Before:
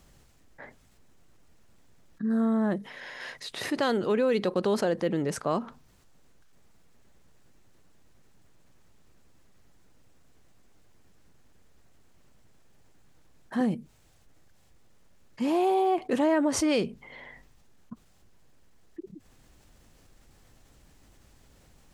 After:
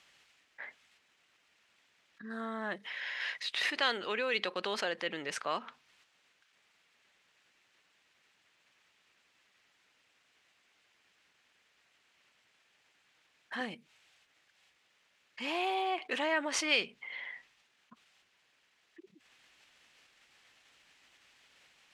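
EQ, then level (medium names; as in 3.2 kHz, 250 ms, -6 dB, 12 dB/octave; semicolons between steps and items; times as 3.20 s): band-pass filter 2.6 kHz, Q 1.5; +7.0 dB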